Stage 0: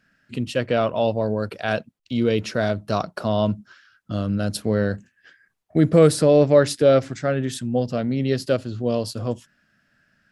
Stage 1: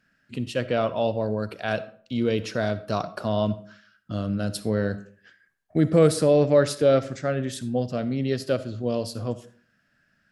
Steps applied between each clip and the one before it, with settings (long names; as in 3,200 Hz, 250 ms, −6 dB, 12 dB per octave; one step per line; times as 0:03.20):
convolution reverb RT60 0.50 s, pre-delay 20 ms, DRR 14 dB
level −3.5 dB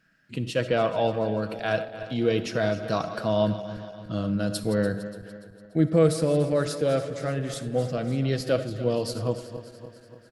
feedback delay that plays each chunk backwards 145 ms, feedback 73%, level −13 dB
comb filter 6.2 ms, depth 36%
speech leveller within 5 dB 2 s
level −3 dB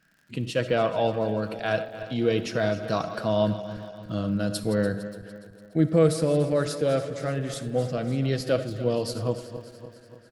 surface crackle 64 per second −46 dBFS